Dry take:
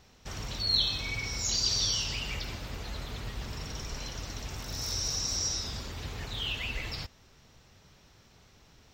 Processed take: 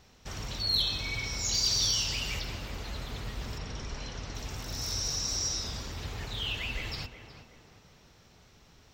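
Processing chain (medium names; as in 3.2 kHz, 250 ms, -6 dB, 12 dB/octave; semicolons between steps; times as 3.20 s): 1.53–2.39 s: treble shelf 7.7 kHz -> 4.2 kHz +6.5 dB; saturation -18 dBFS, distortion -23 dB; 3.58–4.35 s: distance through air 76 m; tape echo 369 ms, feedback 52%, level -8 dB, low-pass 1.5 kHz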